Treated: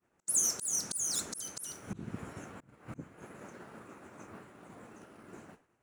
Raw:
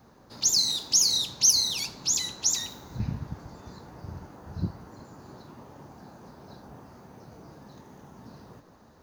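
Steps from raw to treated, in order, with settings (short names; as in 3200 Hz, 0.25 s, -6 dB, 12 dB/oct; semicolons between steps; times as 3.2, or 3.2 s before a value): wide varispeed 1.55×; auto swell 0.291 s; expander -43 dBFS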